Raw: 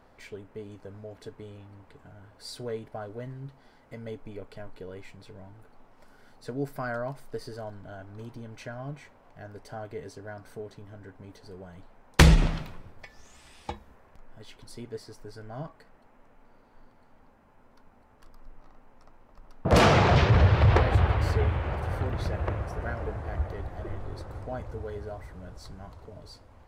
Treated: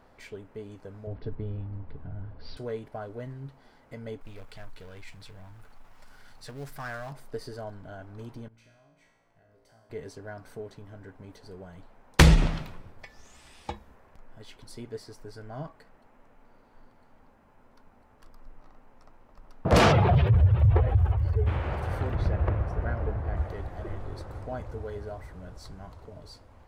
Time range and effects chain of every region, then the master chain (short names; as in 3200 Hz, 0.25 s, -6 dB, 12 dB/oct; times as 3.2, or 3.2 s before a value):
1.07–2.57 RIAA curve playback + careless resampling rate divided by 4×, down none, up filtered
4.21–7.12 G.711 law mismatch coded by mu + bell 360 Hz -11.5 dB 2.7 oct + Doppler distortion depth 0.42 ms
8.48–9.9 compressor 10:1, threshold -45 dBFS + resonator 57 Hz, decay 0.99 s, mix 90%
19.91–21.46 spectral contrast raised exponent 1.8 + bell 3200 Hz +8 dB 0.91 oct + crackle 110/s -49 dBFS
22.15–23.37 LPF 2300 Hz 6 dB/oct + low shelf 140 Hz +6.5 dB
whole clip: dry